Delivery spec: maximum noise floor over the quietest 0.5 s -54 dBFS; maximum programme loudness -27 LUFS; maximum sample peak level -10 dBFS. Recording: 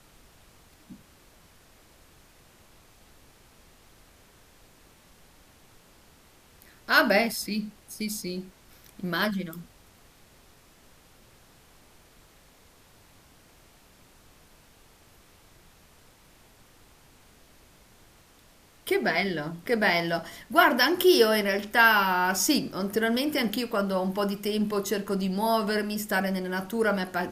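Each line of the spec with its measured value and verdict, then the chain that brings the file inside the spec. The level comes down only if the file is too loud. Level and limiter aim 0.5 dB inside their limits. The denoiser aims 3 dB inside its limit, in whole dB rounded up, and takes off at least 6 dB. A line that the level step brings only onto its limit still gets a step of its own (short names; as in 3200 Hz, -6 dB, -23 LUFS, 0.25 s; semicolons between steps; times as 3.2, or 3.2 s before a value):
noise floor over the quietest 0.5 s -57 dBFS: OK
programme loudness -25.5 LUFS: fail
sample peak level -5.5 dBFS: fail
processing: gain -2 dB; limiter -10.5 dBFS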